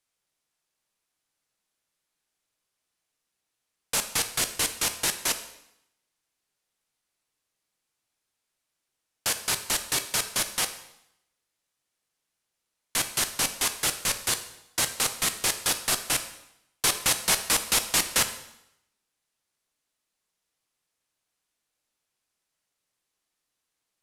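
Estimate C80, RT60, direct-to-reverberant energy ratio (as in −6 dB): 13.5 dB, 0.80 s, 7.5 dB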